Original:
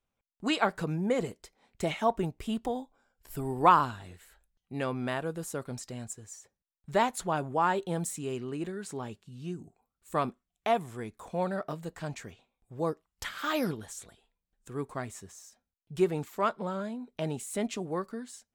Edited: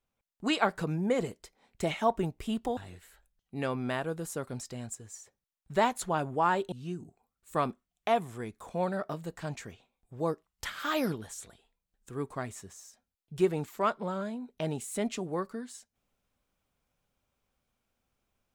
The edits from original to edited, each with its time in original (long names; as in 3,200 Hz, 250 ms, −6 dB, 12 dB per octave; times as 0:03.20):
0:02.77–0:03.95: remove
0:07.90–0:09.31: remove